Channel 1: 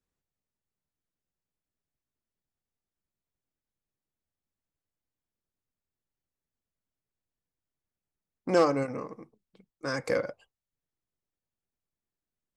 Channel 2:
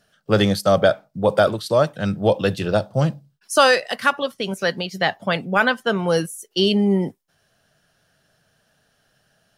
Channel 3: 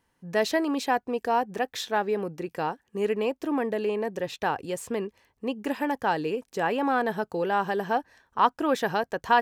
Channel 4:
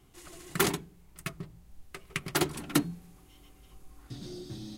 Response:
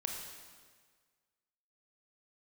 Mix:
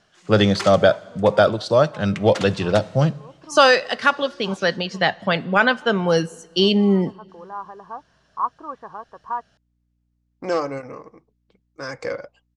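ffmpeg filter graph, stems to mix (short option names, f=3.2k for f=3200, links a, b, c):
-filter_complex "[0:a]equalizer=f=210:w=1.2:g=-6,acontrast=39,aeval=exprs='val(0)+0.000631*(sin(2*PI*60*n/s)+sin(2*PI*2*60*n/s)/2+sin(2*PI*3*60*n/s)/3+sin(2*PI*4*60*n/s)/4+sin(2*PI*5*60*n/s)/5)':c=same,adelay=1950,volume=-4dB[a];[1:a]volume=0.5dB,asplit=3[b][c][d];[c]volume=-20dB[e];[2:a]lowpass=f=1.1k:t=q:w=9.8,volume=-16dB[f];[3:a]highpass=540,volume=-3dB,asplit=2[g][h];[h]volume=-8.5dB[i];[d]apad=whole_len=415332[j];[f][j]sidechaincompress=threshold=-25dB:ratio=8:attack=16:release=390[k];[4:a]atrim=start_sample=2205[l];[e][i]amix=inputs=2:normalize=0[m];[m][l]afir=irnorm=-1:irlink=0[n];[a][b][k][g][n]amix=inputs=5:normalize=0,lowpass=f=7.1k:w=0.5412,lowpass=f=7.1k:w=1.3066"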